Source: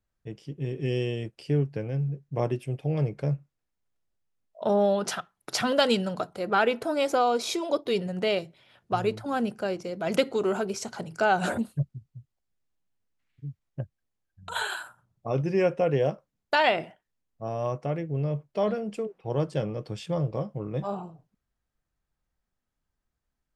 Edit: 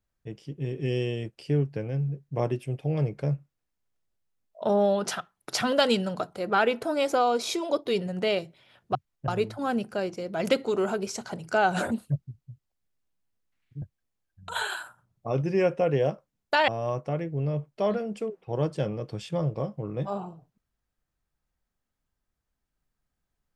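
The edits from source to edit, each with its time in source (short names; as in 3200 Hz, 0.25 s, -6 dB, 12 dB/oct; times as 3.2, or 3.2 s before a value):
13.49–13.82 move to 8.95
16.68–17.45 cut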